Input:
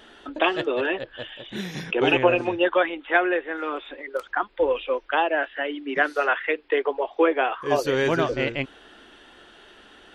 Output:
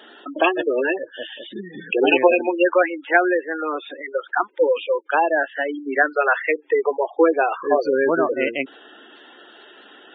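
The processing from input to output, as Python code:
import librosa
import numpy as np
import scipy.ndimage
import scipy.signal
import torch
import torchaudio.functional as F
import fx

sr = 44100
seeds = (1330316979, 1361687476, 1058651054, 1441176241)

y = fx.spec_gate(x, sr, threshold_db=-15, keep='strong')
y = scipy.signal.sosfilt(scipy.signal.butter(4, 240.0, 'highpass', fs=sr, output='sos'), y)
y = y * librosa.db_to_amplitude(4.5)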